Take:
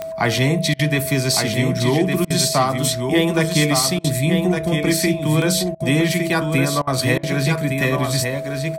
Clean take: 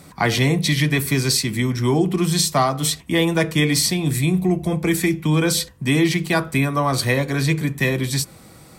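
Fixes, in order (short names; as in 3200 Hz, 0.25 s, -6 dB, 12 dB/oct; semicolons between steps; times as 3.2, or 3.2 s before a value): de-click; notch 650 Hz, Q 30; interpolate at 0.74/2.25/3.99/5.75/6.82/7.18, 51 ms; inverse comb 1.16 s -5.5 dB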